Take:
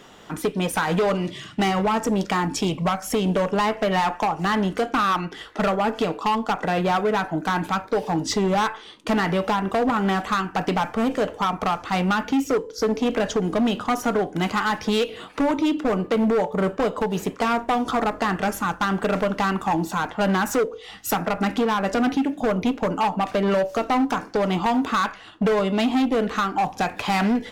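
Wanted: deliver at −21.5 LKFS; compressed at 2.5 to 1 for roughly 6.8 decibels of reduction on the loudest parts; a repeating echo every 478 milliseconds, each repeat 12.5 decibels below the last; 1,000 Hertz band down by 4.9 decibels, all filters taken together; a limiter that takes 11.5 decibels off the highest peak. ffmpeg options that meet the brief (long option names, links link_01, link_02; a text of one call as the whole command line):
ffmpeg -i in.wav -af "equalizer=frequency=1000:width_type=o:gain=-6.5,acompressor=threshold=-29dB:ratio=2.5,alimiter=level_in=5.5dB:limit=-24dB:level=0:latency=1,volume=-5.5dB,aecho=1:1:478|956|1434:0.237|0.0569|0.0137,volume=15dB" out.wav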